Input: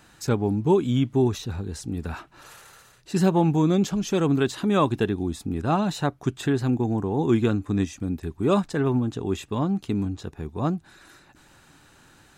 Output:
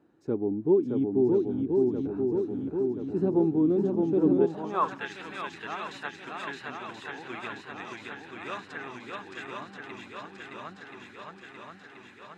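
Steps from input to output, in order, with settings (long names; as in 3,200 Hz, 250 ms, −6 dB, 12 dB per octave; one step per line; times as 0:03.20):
feedback echo with a long and a short gap by turns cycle 1,030 ms, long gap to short 1.5 to 1, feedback 64%, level −3 dB
band-pass filter sweep 340 Hz → 2,000 Hz, 0:04.35–0:05.05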